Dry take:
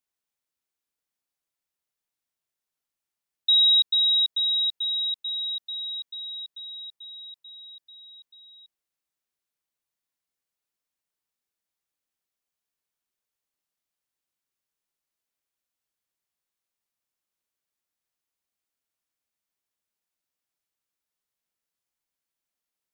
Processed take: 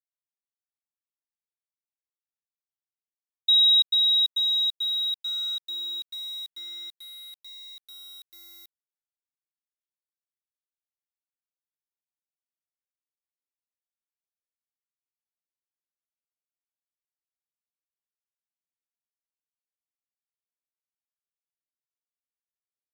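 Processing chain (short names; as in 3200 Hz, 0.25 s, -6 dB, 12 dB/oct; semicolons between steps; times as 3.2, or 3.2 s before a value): formant sharpening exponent 1.5; bit-crush 8-bit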